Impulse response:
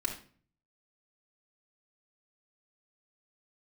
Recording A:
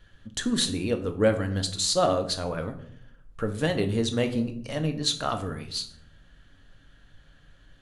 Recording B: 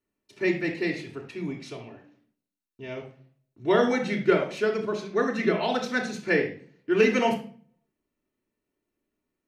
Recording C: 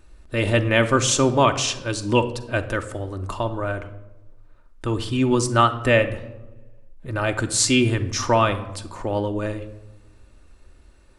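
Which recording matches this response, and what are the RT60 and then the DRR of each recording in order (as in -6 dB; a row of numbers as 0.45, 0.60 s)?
B; 0.65 s, 0.45 s, not exponential; 5.5, -2.0, 6.0 dB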